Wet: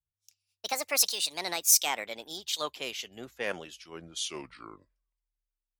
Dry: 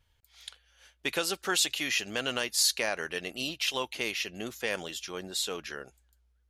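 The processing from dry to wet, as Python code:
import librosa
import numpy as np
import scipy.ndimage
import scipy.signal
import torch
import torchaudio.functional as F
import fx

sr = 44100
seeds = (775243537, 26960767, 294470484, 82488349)

y = fx.speed_glide(x, sr, from_pct=171, to_pct=53)
y = fx.low_shelf(y, sr, hz=120.0, db=-5.0)
y = fx.band_widen(y, sr, depth_pct=100)
y = F.gain(torch.from_numpy(y), -2.5).numpy()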